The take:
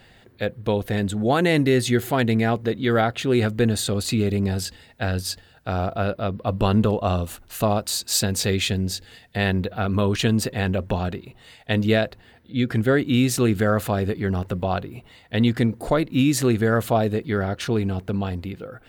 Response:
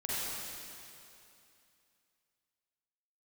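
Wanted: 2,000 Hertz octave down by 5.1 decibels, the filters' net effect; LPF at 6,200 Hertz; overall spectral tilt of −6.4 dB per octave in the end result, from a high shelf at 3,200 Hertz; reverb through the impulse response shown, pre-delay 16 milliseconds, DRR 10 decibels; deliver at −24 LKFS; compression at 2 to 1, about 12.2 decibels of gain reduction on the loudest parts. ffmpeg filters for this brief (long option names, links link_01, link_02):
-filter_complex "[0:a]lowpass=6200,equalizer=frequency=2000:width_type=o:gain=-4,highshelf=frequency=3200:gain=-8,acompressor=threshold=-38dB:ratio=2,asplit=2[link_01][link_02];[1:a]atrim=start_sample=2205,adelay=16[link_03];[link_02][link_03]afir=irnorm=-1:irlink=0,volume=-16dB[link_04];[link_01][link_04]amix=inputs=2:normalize=0,volume=10dB"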